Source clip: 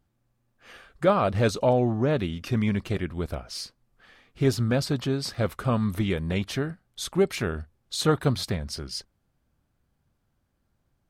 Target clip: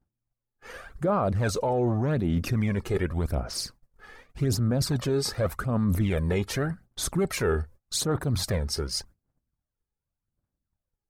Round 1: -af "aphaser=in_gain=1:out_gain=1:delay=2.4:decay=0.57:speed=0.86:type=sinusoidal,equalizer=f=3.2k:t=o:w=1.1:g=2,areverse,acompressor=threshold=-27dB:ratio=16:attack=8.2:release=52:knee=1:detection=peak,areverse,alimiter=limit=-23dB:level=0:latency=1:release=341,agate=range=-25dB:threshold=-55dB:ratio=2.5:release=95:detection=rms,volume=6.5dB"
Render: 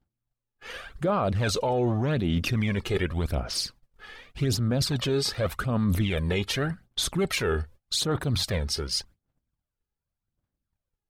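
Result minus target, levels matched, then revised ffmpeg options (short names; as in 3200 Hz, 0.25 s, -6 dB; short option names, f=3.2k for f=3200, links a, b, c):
4000 Hz band +4.5 dB
-af "aphaser=in_gain=1:out_gain=1:delay=2.4:decay=0.57:speed=0.86:type=sinusoidal,equalizer=f=3.2k:t=o:w=1.1:g=-9.5,areverse,acompressor=threshold=-27dB:ratio=16:attack=8.2:release=52:knee=1:detection=peak,areverse,alimiter=limit=-23dB:level=0:latency=1:release=341,agate=range=-25dB:threshold=-55dB:ratio=2.5:release=95:detection=rms,volume=6.5dB"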